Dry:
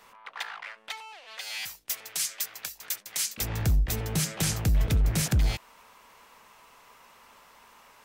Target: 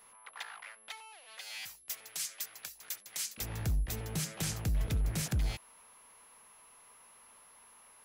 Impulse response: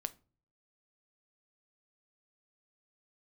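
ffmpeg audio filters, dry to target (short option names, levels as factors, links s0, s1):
-af "aeval=exprs='val(0)+0.00316*sin(2*PI*11000*n/s)':c=same,volume=0.398"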